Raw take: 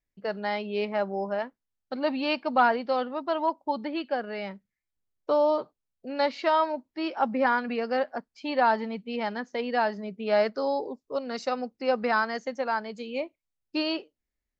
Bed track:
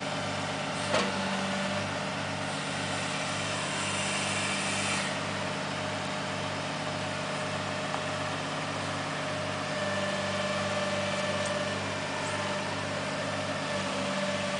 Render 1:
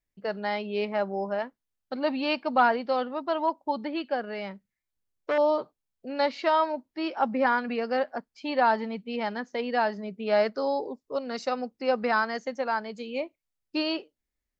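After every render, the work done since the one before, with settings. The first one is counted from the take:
0:04.34–0:05.38: saturating transformer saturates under 1,100 Hz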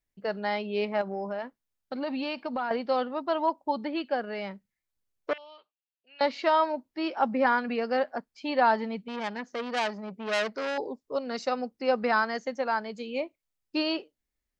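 0:01.01–0:02.71: downward compressor, threshold −28 dBFS
0:05.33–0:06.21: resonant band-pass 2,800 Hz, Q 5.5
0:09.08–0:10.78: saturating transformer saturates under 2,900 Hz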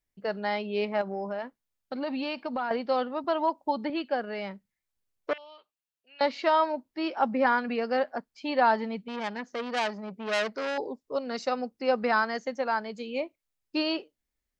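0:03.24–0:03.90: multiband upward and downward compressor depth 40%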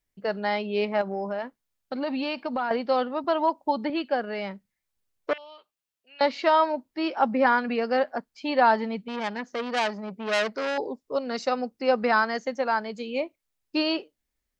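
level +3 dB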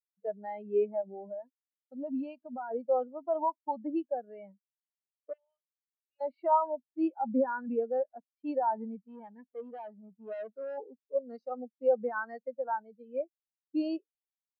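brickwall limiter −16.5 dBFS, peak gain reduction 7 dB
every bin expanded away from the loudest bin 2.5 to 1

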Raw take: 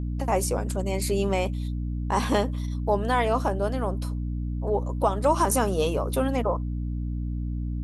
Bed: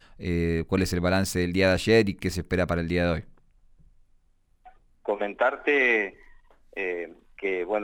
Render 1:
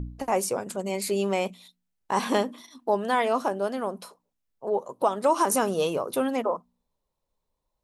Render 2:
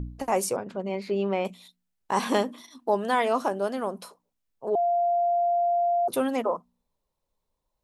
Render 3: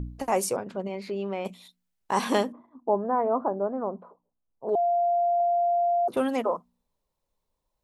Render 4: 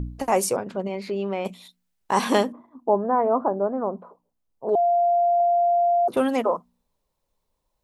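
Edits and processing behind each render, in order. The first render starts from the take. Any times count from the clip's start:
hum removal 60 Hz, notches 5
0:00.56–0:01.45: high-frequency loss of the air 290 metres; 0:04.75–0:06.08: beep over 695 Hz −20.5 dBFS
0:00.87–0:01.46: downward compressor 1.5 to 1, threshold −35 dBFS; 0:02.52–0:04.69: low-pass filter 1,100 Hz 24 dB per octave; 0:05.40–0:06.17: multiband upward and downward compressor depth 100%
level +4 dB

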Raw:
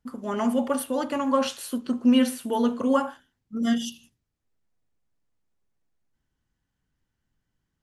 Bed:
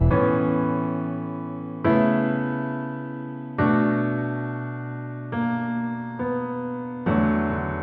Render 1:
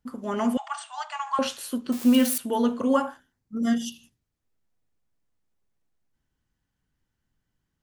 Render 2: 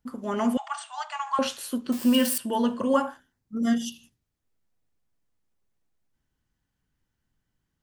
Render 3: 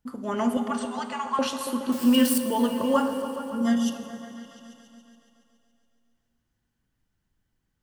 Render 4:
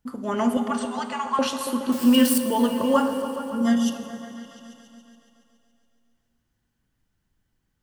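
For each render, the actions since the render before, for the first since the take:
0:00.57–0:01.39: linear-phase brick-wall band-pass 620–8,800 Hz; 0:01.92–0:02.38: spike at every zero crossing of −22 dBFS; 0:03.08–0:03.86: parametric band 3,100 Hz −6.5 dB 0.67 octaves
0:01.98–0:02.94: EQ curve with evenly spaced ripples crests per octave 1.3, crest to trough 7 dB
echo whose low-pass opens from repeat to repeat 140 ms, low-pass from 400 Hz, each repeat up 1 octave, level −6 dB; dense smooth reverb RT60 2.9 s, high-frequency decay 0.95×, DRR 9.5 dB
level +2.5 dB

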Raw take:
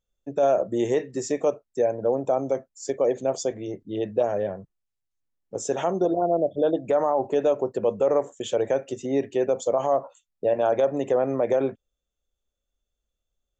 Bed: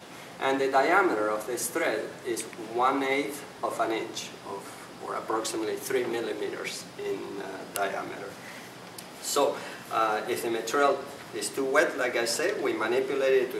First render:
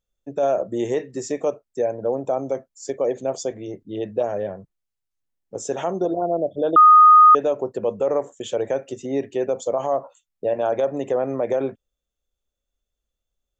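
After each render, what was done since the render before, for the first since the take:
0:06.76–0:07.35: beep over 1,240 Hz −6.5 dBFS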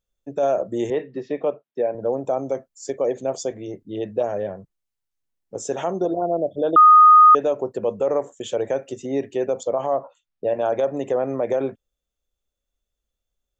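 0:00.90–0:01.95: elliptic band-pass filter 140–3,500 Hz
0:09.63–0:10.46: low-pass filter 4,100 Hz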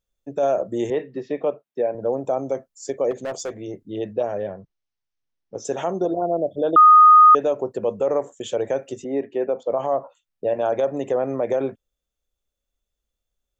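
0:03.11–0:03.63: hard clipping −24 dBFS
0:04.13–0:05.65: elliptic low-pass filter 6,000 Hz
0:09.04–0:09.70: band-pass filter 200–2,200 Hz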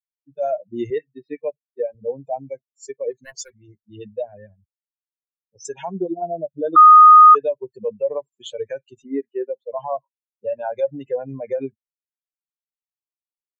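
spectral dynamics exaggerated over time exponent 3
automatic gain control gain up to 4.5 dB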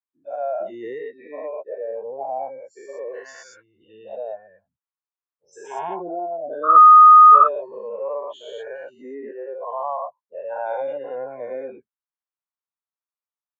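every bin's largest magnitude spread in time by 240 ms
resonant band-pass 1,100 Hz, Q 2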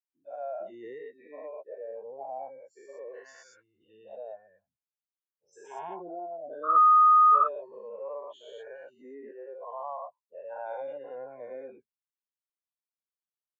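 level −10.5 dB

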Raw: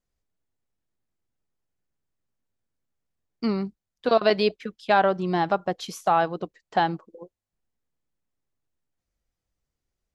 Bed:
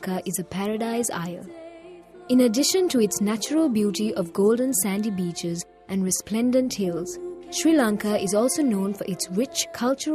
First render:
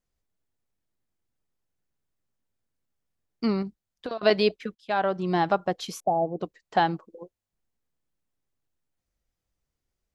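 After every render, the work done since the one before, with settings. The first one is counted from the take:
0:03.62–0:04.23: downward compressor 10 to 1, threshold −28 dBFS
0:04.75–0:05.35: fade in, from −14.5 dB
0:06.00–0:06.40: elliptic low-pass filter 760 Hz, stop band 50 dB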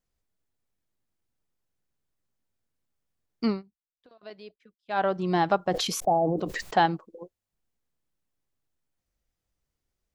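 0:03.48–0:04.99: duck −23.5 dB, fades 0.14 s
0:05.70–0:06.86: level that may fall only so fast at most 29 dB per second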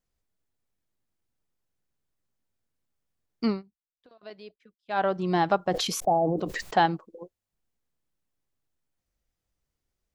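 no processing that can be heard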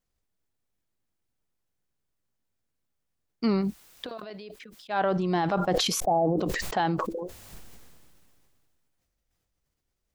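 brickwall limiter −16 dBFS, peak gain reduction 7 dB
level that may fall only so fast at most 24 dB per second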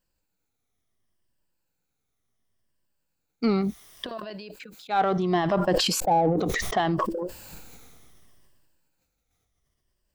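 rippled gain that drifts along the octave scale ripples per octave 1.3, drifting −0.69 Hz, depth 9 dB
in parallel at −8.5 dB: soft clipping −26.5 dBFS, distortion −9 dB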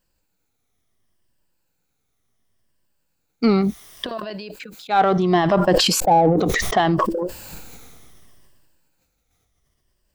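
level +6.5 dB

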